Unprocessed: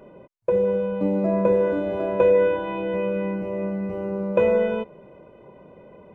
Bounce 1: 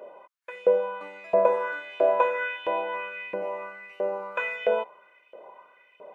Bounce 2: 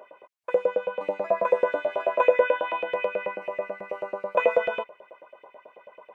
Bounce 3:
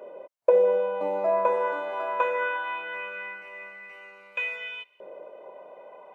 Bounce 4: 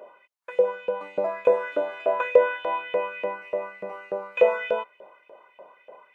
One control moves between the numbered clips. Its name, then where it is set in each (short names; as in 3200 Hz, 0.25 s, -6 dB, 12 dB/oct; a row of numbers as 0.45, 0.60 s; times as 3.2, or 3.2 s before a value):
LFO high-pass, rate: 1.5, 9.2, 0.2, 3.4 Hz